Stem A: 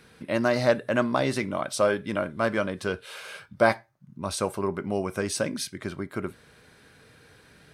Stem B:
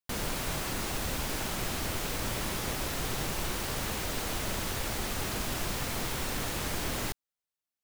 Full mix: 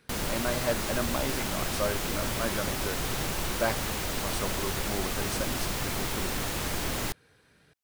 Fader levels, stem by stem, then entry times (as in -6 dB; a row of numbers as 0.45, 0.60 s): -8.0, +2.0 dB; 0.00, 0.00 s